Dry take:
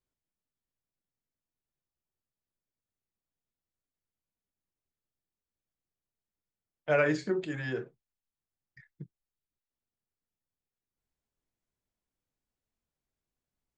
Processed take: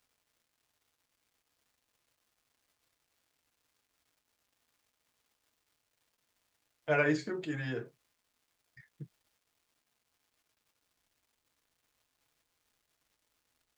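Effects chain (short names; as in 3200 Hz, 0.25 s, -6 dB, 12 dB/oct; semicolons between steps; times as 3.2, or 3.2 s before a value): crackle 470/s -61 dBFS; notch comb 190 Hz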